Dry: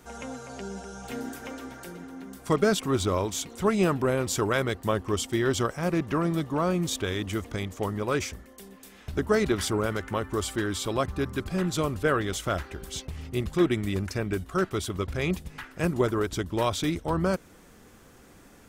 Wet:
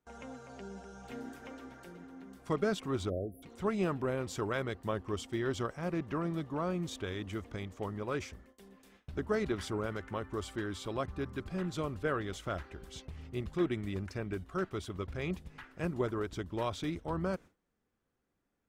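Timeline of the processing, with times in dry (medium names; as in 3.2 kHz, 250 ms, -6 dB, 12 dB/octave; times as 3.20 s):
3.09–3.43 s: spectral selection erased 740–9700 Hz
whole clip: gate with hold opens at -38 dBFS; treble shelf 6.2 kHz -12 dB; trim -8.5 dB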